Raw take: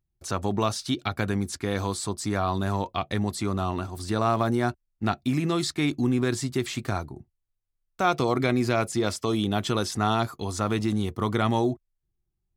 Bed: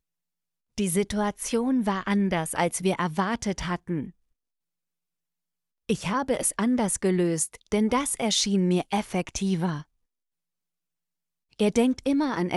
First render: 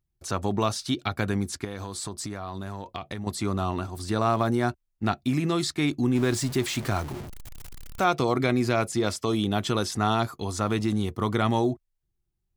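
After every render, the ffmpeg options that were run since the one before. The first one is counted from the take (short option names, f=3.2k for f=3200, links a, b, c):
-filter_complex "[0:a]asettb=1/sr,asplit=3[a][b][c];[a]atrim=end=1.644[d];[b]atrim=start=1.64:end=3.27,asetpts=PTS-STARTPTS,afade=t=in:d=0.004:c=qsin,afade=t=out:st=1.626:d=0.004:c=qsin,acompressor=threshold=-29dB:ratio=12:attack=3.2:release=140:knee=1:detection=peak[e];[c]atrim=start=3.266[f];[d][e]acrossfade=d=0.004:c1=hsin:c2=qsin[g];[g][f]acrossfade=d=0.004:c1=qsin:c2=hsin,asettb=1/sr,asplit=3[h][i][j];[h]atrim=end=6.154[k];[i]atrim=start=6.15:end=8.04,asetpts=PTS-STARTPTS,afade=t=in:d=0.004:c=qsin,afade=t=out:st=1.886:d=0.004:c=qsin,aeval=exprs='val(0)+0.5*0.0224*sgn(val(0))':c=same[l];[j]atrim=start=8.036[m];[k][l]acrossfade=d=0.004:c1=hsin:c2=qsin[n];[n][m]acrossfade=d=0.004:c1=qsin:c2=hsin"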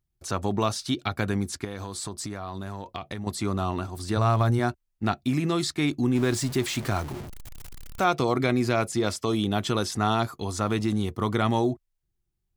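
-filter_complex "[0:a]asplit=3[a][b][c];[a]afade=t=out:st=4.16:d=0.02[d];[b]asubboost=boost=7:cutoff=100,afade=t=in:st=4.16:d=0.02,afade=t=out:st=4.58:d=0.02[e];[c]afade=t=in:st=4.58:d=0.02[f];[d][e][f]amix=inputs=3:normalize=0"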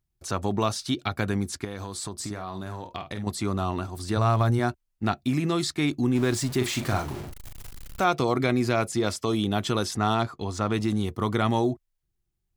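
-filter_complex "[0:a]asettb=1/sr,asplit=3[a][b][c];[a]atrim=end=2.154[d];[b]atrim=start=2.15:end=3.31,asetpts=PTS-STARTPTS,afade=t=in:d=0.004:c=qsin,afade=t=out:st=1.156:d=0.004:c=qsin,asplit=2[e][f];[f]adelay=48,volume=-8.5dB[g];[e][g]amix=inputs=2:normalize=0,atrim=end_sample=51156[h];[c]atrim=start=3.306[i];[d][h]acrossfade=d=0.004:c1=hsin:c2=qsin[j];[j][i]acrossfade=d=0.004:c1=qsin:c2=hsin,asettb=1/sr,asplit=3[k][l][m];[k]atrim=end=6.574[n];[l]atrim=start=6.57:end=8.01,asetpts=PTS-STARTPTS,afade=t=in:d=0.004:c=qsin,afade=t=out:st=1.436:d=0.004:c=qsin,asplit=2[o][p];[p]adelay=40,volume=-6dB[q];[o][q]amix=inputs=2:normalize=0,atrim=end_sample=63504[r];[m]atrim=start=8.006[s];[n][r]acrossfade=d=0.004:c1=hsin:c2=qsin[t];[t][s]acrossfade=d=0.004:c1=qsin:c2=hsin,asettb=1/sr,asplit=3[u][v][w];[u]atrim=end=9.964[x];[v]atrim=start=9.96:end=10.74,asetpts=PTS-STARTPTS,afade=t=in:d=0.004:c=qsin,afade=t=out:st=0.776:d=0.004:c=qsin,adynamicsmooth=sensitivity=4:basefreq=5.7k[y];[w]atrim=start=10.736[z];[x][y]acrossfade=d=0.004:c1=hsin:c2=qsin[aa];[aa][z]acrossfade=d=0.004:c1=qsin:c2=hsin"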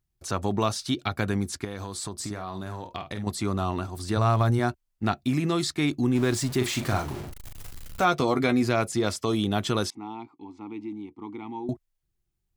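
-filter_complex "[0:a]asettb=1/sr,asplit=3[a][b][c];[a]atrim=end=7.544[d];[b]atrim=start=7.54:end=8.63,asetpts=PTS-STARTPTS,afade=t=in:d=0.004:c=qsin,afade=t=out:st=1.086:d=0.004:c=qsin,asplit=2[e][f];[f]adelay=12,volume=-8dB[g];[e][g]amix=inputs=2:normalize=0,atrim=end_sample=48069[h];[c]atrim=start=8.626[i];[d][h]acrossfade=d=0.004:c1=hsin:c2=qsin[j];[j][i]acrossfade=d=0.004:c1=qsin:c2=hsin,asettb=1/sr,asplit=3[k][l][m];[k]atrim=end=9.904[n];[l]atrim=start=9.9:end=11.69,asetpts=PTS-STARTPTS,afade=t=in:d=0.004:c=qsin,afade=t=out:st=1.786:d=0.004:c=qsin,asplit=3[o][p][q];[o]bandpass=f=300:t=q:w=8,volume=0dB[r];[p]bandpass=f=870:t=q:w=8,volume=-6dB[s];[q]bandpass=f=2.24k:t=q:w=8,volume=-9dB[t];[r][s][t]amix=inputs=3:normalize=0[u];[m]atrim=start=11.686[v];[n][u]acrossfade=d=0.004:c1=hsin:c2=qsin[w];[w][v]acrossfade=d=0.004:c1=qsin:c2=hsin"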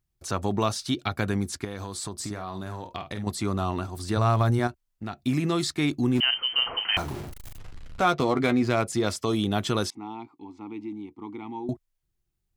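-filter_complex "[0:a]asettb=1/sr,asplit=3[a][b][c];[a]atrim=end=4.674[d];[b]atrim=start=4.67:end=5.26,asetpts=PTS-STARTPTS,afade=t=in:d=0.004:c=qsin,afade=t=out:st=0.586:d=0.004:c=qsin,acompressor=threshold=-36dB:ratio=2:attack=3.2:release=140:knee=1:detection=peak[e];[c]atrim=start=5.256[f];[d][e]acrossfade=d=0.004:c1=hsin:c2=qsin[g];[g][f]acrossfade=d=0.004:c1=qsin:c2=hsin,asettb=1/sr,asplit=3[h][i][j];[h]atrim=end=6.204[k];[i]atrim=start=6.2:end=6.97,asetpts=PTS-STARTPTS,afade=t=in:d=0.004:c=qsin,afade=t=out:st=0.766:d=0.004:c=qsin,lowpass=f=2.7k:t=q:w=0.5098,lowpass=f=2.7k:t=q:w=0.6013,lowpass=f=2.7k:t=q:w=0.9,lowpass=f=2.7k:t=q:w=2.563,afreqshift=-3200[l];[j]atrim=start=6.966[m];[k][l]acrossfade=d=0.004:c1=hsin:c2=qsin[n];[n][m]acrossfade=d=0.004:c1=qsin:c2=hsin,asettb=1/sr,asplit=3[o][p][q];[o]atrim=end=7.584[r];[p]atrim=start=7.58:end=8.88,asetpts=PTS-STARTPTS,afade=t=in:d=0.004:c=qsin,afade=t=out:st=1.296:d=0.004:c=qsin,adynamicsmooth=sensitivity=6.5:basefreq=3.3k[s];[q]atrim=start=8.876[t];[r][s]acrossfade=d=0.004:c1=hsin:c2=qsin[u];[u][t]acrossfade=d=0.004:c1=qsin:c2=hsin"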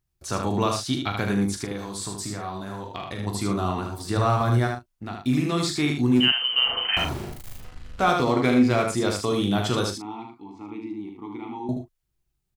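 -filter_complex "[0:a]asplit=2[a][b];[b]adelay=40,volume=-8.5dB[c];[a][c]amix=inputs=2:normalize=0,aecho=1:1:16|76:0.335|0.596"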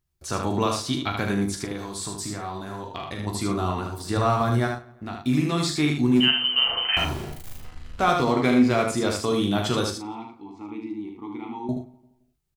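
-filter_complex "[0:a]asplit=2[a][b];[b]adelay=13,volume=-11dB[c];[a][c]amix=inputs=2:normalize=0,asplit=2[d][e];[e]adelay=172,lowpass=f=2.6k:p=1,volume=-22dB,asplit=2[f][g];[g]adelay=172,lowpass=f=2.6k:p=1,volume=0.38,asplit=2[h][i];[i]adelay=172,lowpass=f=2.6k:p=1,volume=0.38[j];[d][f][h][j]amix=inputs=4:normalize=0"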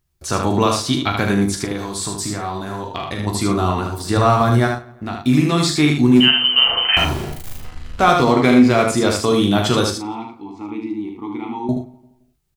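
-af "volume=7.5dB,alimiter=limit=-2dB:level=0:latency=1"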